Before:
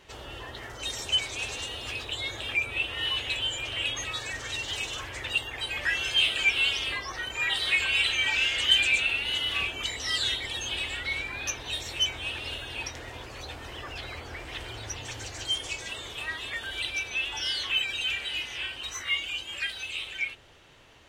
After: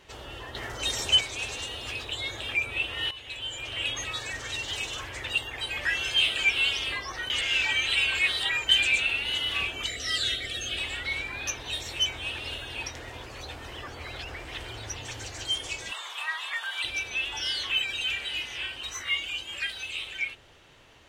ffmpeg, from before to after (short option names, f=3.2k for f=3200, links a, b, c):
-filter_complex "[0:a]asettb=1/sr,asplit=3[a][b][c];[a]atrim=end=9.874[d];[b]atrim=start=9.87:end=10.78,asetpts=PTS-STARTPTS,afade=t=in:d=0.004:c=qsin,afade=t=out:st=0.906:d=0.004:c=qsin,asuperstop=centerf=940:order=12:qfactor=2.4[e];[c]atrim=start=10.776[f];[d][e]acrossfade=d=0.004:c1=hsin:c2=qsin[g];[g][f]acrossfade=d=0.004:c1=qsin:c2=hsin,asettb=1/sr,asplit=3[h][i][j];[h]atrim=end=15.924[k];[i]atrim=start=15.92:end=16.84,asetpts=PTS-STARTPTS,afade=t=in:d=0.004:c=qsin,afade=t=out:st=0.916:d=0.004:c=qsin,highpass=f=1k:t=q:w=2.3[l];[j]atrim=start=16.836[m];[k][l]acrossfade=d=0.004:c1=hsin:c2=qsin[n];[n][m]acrossfade=d=0.004:c1=qsin:c2=hsin,asplit=8[o][p][q][r][s][t][u][v];[o]atrim=end=0.552[w];[p]atrim=start=0.548:end=1.212,asetpts=PTS-STARTPTS,volume=4.5dB[x];[q]atrim=start=1.208:end=3.11,asetpts=PTS-STARTPTS,afade=t=out:st=1.898:d=0.004:c=hsin:silence=0.177828[y];[r]atrim=start=3.11:end=7.302,asetpts=PTS-STARTPTS,afade=t=in:d=0.78:silence=0.177828[z];[s]atrim=start=7.298:end=8.692,asetpts=PTS-STARTPTS,areverse[aa];[t]atrim=start=8.688:end=13.882[ab];[u]atrim=start=13.878:end=14.322,asetpts=PTS-STARTPTS,areverse[ac];[v]atrim=start=14.318[ad];[w][x]acrossfade=d=0.004:c1=hsin:c2=hsin[ae];[y][z]concat=n=2:v=0:a=1[af];[ae][af]acrossfade=d=0.004:c1=hsin:c2=hsin[ag];[ag][aa]acrossfade=d=0.004:c1=hsin:c2=hsin[ah];[ah][ab]acrossfade=d=0.004:c1=hsin:c2=hsin[ai];[ai][ac]acrossfade=d=0.004:c1=hsin:c2=hsin[aj];[aj][ad]acrossfade=d=0.004:c1=hsin:c2=hsin"